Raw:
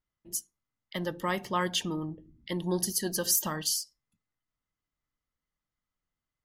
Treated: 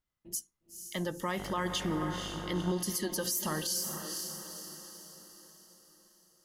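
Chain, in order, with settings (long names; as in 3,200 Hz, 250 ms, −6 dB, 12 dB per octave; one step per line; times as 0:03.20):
feedback delay with all-pass diffusion 485 ms, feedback 48%, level −9 dB
0:01.38–0:02.72: hum with harmonics 50 Hz, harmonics 32, −44 dBFS −3 dB per octave
brickwall limiter −23 dBFS, peak gain reduction 9 dB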